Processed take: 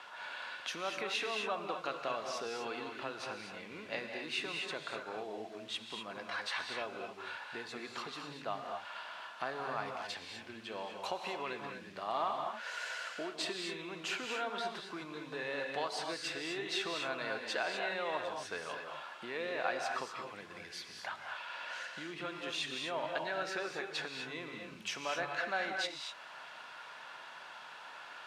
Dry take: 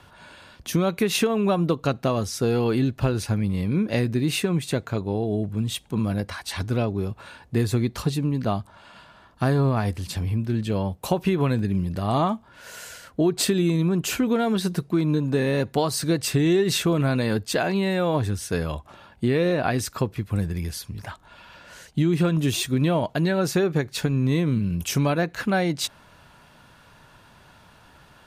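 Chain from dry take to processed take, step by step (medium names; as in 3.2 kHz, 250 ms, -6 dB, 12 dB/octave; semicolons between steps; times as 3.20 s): compression 2:1, threshold -42 dBFS, peak gain reduction 14 dB; word length cut 10-bit, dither triangular; band-pass 760–3700 Hz; gated-style reverb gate 270 ms rising, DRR 2.5 dB; trim +4 dB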